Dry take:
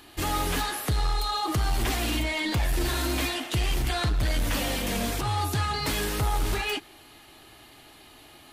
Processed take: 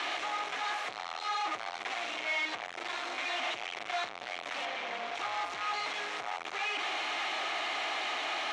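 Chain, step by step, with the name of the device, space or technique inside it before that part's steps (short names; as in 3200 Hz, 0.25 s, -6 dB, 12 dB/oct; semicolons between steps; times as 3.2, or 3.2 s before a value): home computer beeper (infinite clipping; speaker cabinet 610–5300 Hz, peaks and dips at 720 Hz +7 dB, 1200 Hz +4 dB, 2200 Hz +6 dB, 4800 Hz -8 dB); 4.65–5.15 bell 12000 Hz -14.5 dB 1.5 oct; gain -6.5 dB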